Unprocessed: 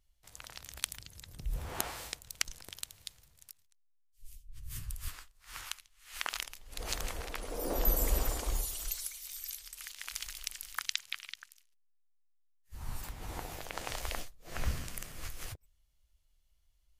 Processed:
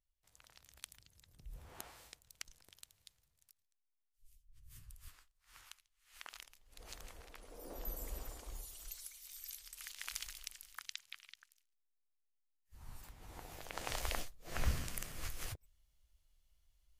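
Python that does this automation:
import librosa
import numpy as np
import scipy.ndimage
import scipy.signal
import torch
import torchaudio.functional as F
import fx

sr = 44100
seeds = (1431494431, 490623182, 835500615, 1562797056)

y = fx.gain(x, sr, db=fx.line((8.48, -15.0), (10.08, -2.0), (10.71, -12.0), (13.3, -12.0), (13.95, -1.0)))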